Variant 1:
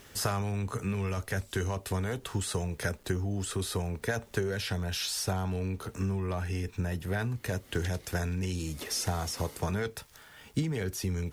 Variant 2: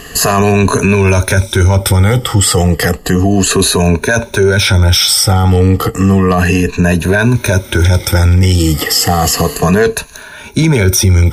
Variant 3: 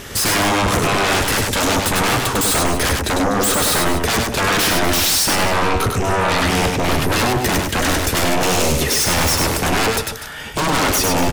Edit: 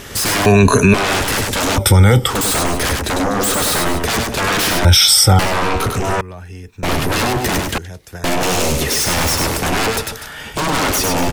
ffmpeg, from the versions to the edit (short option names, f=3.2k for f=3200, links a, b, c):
-filter_complex "[1:a]asplit=3[a][b][c];[0:a]asplit=2[d][e];[2:a]asplit=6[f][g][h][i][j][k];[f]atrim=end=0.462[l];[a]atrim=start=0.458:end=0.942[m];[g]atrim=start=0.938:end=1.782[n];[b]atrim=start=1.778:end=2.302[o];[h]atrim=start=2.298:end=4.852[p];[c]atrim=start=4.848:end=5.392[q];[i]atrim=start=5.388:end=6.212[r];[d]atrim=start=6.208:end=6.832[s];[j]atrim=start=6.828:end=7.782[t];[e]atrim=start=7.778:end=8.242[u];[k]atrim=start=8.238[v];[l][m]acrossfade=d=0.004:c1=hsin:c2=hsin[w];[w][n]acrossfade=d=0.004:c1=hsin:c2=hsin[x];[x][o]acrossfade=d=0.004:c1=hsin:c2=hsin[y];[y][p]acrossfade=d=0.004:c1=hsin:c2=hsin[z];[z][q]acrossfade=d=0.004:c1=hsin:c2=hsin[aa];[aa][r]acrossfade=d=0.004:c1=hsin:c2=hsin[ab];[ab][s]acrossfade=d=0.004:c1=hsin:c2=hsin[ac];[ac][t]acrossfade=d=0.004:c1=hsin:c2=hsin[ad];[ad][u]acrossfade=d=0.004:c1=hsin:c2=hsin[ae];[ae][v]acrossfade=d=0.004:c1=hsin:c2=hsin"